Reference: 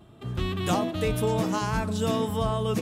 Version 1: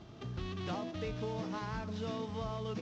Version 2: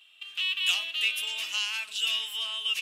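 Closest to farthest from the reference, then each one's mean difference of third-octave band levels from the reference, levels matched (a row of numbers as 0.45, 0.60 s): 1, 2; 5.0, 17.5 dB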